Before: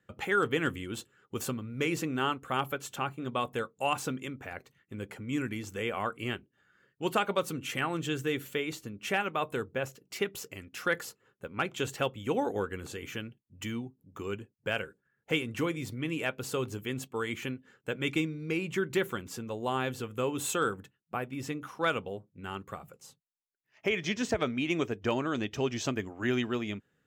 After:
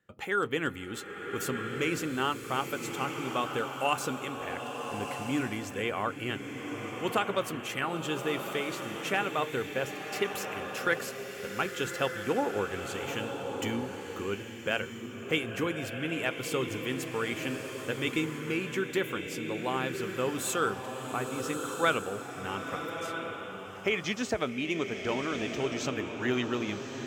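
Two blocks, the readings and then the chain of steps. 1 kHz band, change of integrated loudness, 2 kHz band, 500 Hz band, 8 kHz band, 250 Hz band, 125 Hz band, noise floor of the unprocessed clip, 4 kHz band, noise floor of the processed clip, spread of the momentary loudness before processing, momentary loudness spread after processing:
+1.5 dB, +1.0 dB, +2.0 dB, +1.0 dB, +2.0 dB, +0.5 dB, -1.0 dB, -78 dBFS, +2.0 dB, -42 dBFS, 11 LU, 7 LU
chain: bell 99 Hz -3.5 dB 2.4 oct; vocal rider within 4 dB 2 s; bloom reverb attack 1.31 s, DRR 4.5 dB

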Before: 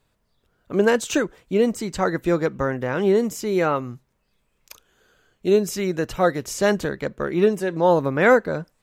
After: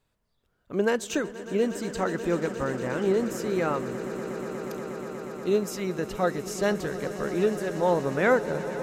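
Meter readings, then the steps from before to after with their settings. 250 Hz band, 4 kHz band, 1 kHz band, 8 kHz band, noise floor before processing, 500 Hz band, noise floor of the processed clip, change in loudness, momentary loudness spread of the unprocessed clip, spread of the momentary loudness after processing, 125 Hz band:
-5.5 dB, -5.5 dB, -6.0 dB, -5.5 dB, -70 dBFS, -5.5 dB, -73 dBFS, -6.5 dB, 8 LU, 9 LU, -5.5 dB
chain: swelling echo 0.12 s, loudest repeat 8, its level -17 dB; gain -6.5 dB

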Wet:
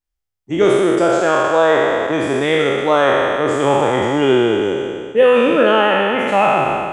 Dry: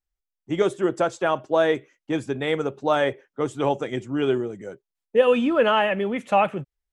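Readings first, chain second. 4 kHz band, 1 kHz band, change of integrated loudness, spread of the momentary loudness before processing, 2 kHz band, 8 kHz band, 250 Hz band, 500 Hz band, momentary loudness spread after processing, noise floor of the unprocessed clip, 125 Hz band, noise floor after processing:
+9.5 dB, +9.0 dB, +8.5 dB, 10 LU, +10.0 dB, n/a, +8.0 dB, +8.5 dB, 5 LU, under -85 dBFS, +7.0 dB, -79 dBFS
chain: spectral trails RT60 2.94 s; AGC; gain -1 dB

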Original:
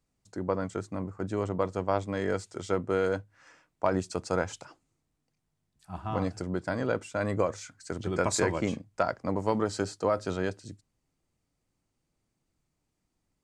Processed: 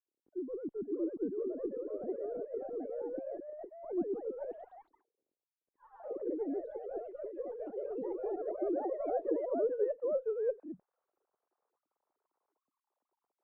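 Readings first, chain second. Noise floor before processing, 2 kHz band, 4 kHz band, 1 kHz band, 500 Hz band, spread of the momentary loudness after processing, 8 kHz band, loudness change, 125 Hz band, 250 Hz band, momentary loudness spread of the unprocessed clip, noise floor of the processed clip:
-80 dBFS, under -25 dB, under -40 dB, -12.5 dB, -4.0 dB, 11 LU, under -40 dB, -6.5 dB, under -25 dB, -6.5 dB, 8 LU, under -85 dBFS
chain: sine-wave speech; reverse; compressor 6:1, threshold -38 dBFS, peak gain reduction 17.5 dB; reverse; added harmonics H 2 -22 dB, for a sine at -28.5 dBFS; low-pass sweep 310 Hz -> 990 Hz, 8.53–12.3; echoes that change speed 0.558 s, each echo +2 st, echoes 3; gain +1.5 dB

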